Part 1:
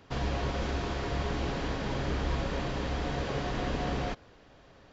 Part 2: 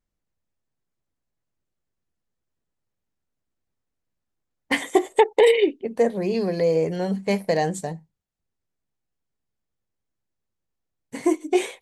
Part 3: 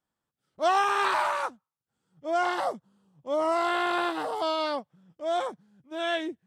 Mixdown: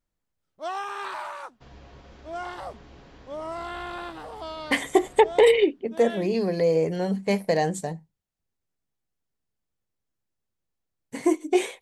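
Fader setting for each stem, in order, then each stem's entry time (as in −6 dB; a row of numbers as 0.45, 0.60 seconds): −17.0, −1.0, −8.5 decibels; 1.50, 0.00, 0.00 seconds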